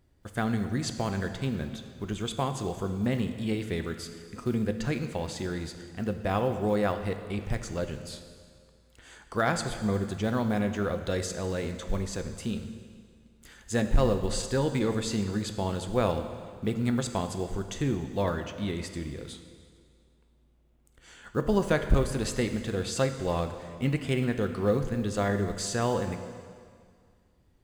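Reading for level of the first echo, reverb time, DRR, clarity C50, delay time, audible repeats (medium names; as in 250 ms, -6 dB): no echo, 2.1 s, 7.5 dB, 9.0 dB, no echo, no echo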